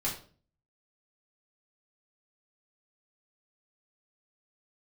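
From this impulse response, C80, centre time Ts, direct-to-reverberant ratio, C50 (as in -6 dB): 12.0 dB, 26 ms, -6.0 dB, 7.5 dB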